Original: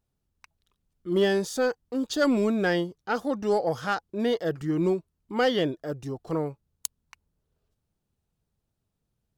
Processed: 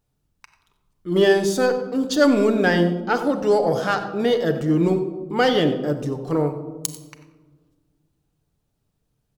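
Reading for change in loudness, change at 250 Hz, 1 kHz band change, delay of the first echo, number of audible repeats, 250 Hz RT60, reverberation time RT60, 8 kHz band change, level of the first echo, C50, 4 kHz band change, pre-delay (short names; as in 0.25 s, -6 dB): +7.0 dB, +6.5 dB, +6.5 dB, 93 ms, 1, 2.1 s, 1.4 s, +6.0 dB, -15.0 dB, 9.0 dB, +6.0 dB, 7 ms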